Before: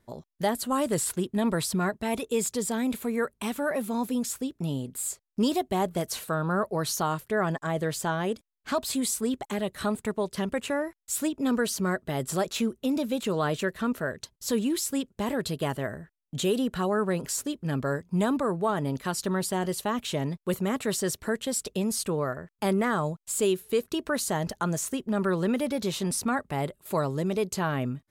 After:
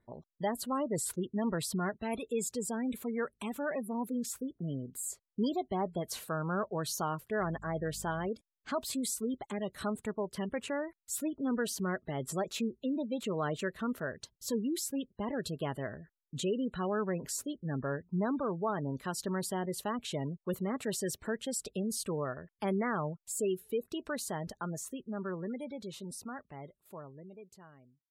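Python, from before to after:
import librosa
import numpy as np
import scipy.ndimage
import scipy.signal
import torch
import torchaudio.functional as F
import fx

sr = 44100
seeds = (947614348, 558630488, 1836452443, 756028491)

y = fx.fade_out_tail(x, sr, length_s=5.06)
y = fx.spec_gate(y, sr, threshold_db=-25, keep='strong')
y = fx.dmg_buzz(y, sr, base_hz=50.0, harmonics=4, level_db=-46.0, tilt_db=-4, odd_only=False, at=(7.39, 8.27), fade=0.02)
y = y * librosa.db_to_amplitude(-6.5)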